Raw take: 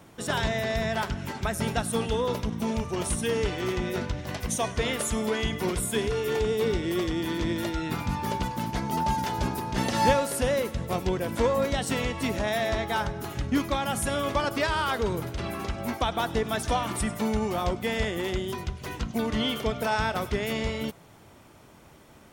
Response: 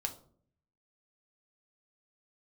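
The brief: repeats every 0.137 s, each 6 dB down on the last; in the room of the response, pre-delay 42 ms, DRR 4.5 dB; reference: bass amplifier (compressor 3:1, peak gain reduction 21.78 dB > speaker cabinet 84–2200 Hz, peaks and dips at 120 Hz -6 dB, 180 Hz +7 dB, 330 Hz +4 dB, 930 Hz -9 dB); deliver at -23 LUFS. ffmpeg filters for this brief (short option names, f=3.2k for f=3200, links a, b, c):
-filter_complex "[0:a]aecho=1:1:137|274|411|548|685|822:0.501|0.251|0.125|0.0626|0.0313|0.0157,asplit=2[a][b];[1:a]atrim=start_sample=2205,adelay=42[c];[b][c]afir=irnorm=-1:irlink=0,volume=-5dB[d];[a][d]amix=inputs=2:normalize=0,acompressor=threshold=-44dB:ratio=3,highpass=f=84:w=0.5412,highpass=f=84:w=1.3066,equalizer=f=120:t=q:w=4:g=-6,equalizer=f=180:t=q:w=4:g=7,equalizer=f=330:t=q:w=4:g=4,equalizer=f=930:t=q:w=4:g=-9,lowpass=f=2.2k:w=0.5412,lowpass=f=2.2k:w=1.3066,volume=19dB"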